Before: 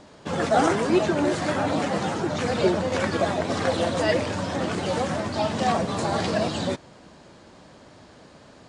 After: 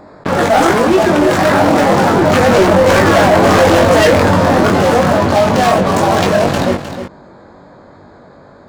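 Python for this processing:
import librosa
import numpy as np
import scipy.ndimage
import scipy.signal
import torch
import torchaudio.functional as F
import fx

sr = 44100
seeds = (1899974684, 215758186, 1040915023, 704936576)

p1 = fx.wiener(x, sr, points=15)
p2 = fx.doppler_pass(p1, sr, speed_mps=8, closest_m=6.2, pass_at_s=3.43)
p3 = fx.low_shelf(p2, sr, hz=480.0, db=-5.5)
p4 = fx.leveller(p3, sr, passes=5)
p5 = fx.doubler(p4, sr, ms=21.0, db=-4)
p6 = p5 + fx.echo_single(p5, sr, ms=309, db=-20.5, dry=0)
p7 = fx.env_flatten(p6, sr, amount_pct=50)
y = p7 * 10.0 ** (4.0 / 20.0)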